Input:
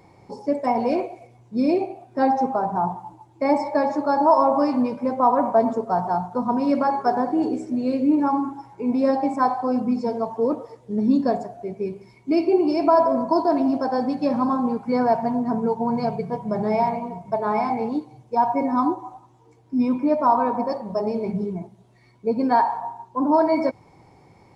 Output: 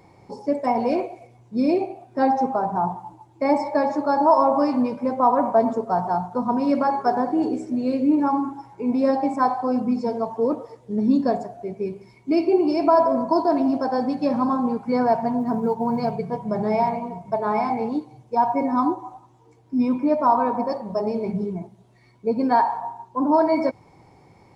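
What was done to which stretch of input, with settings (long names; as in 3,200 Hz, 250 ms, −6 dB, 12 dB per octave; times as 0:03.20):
0:15.40–0:16.12: floating-point word with a short mantissa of 6 bits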